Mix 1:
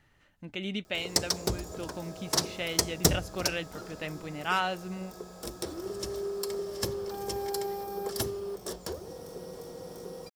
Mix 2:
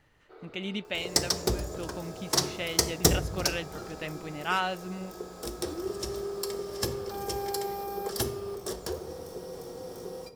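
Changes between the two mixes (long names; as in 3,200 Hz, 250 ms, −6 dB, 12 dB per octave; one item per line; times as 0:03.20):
first sound: unmuted
reverb: on, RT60 0.90 s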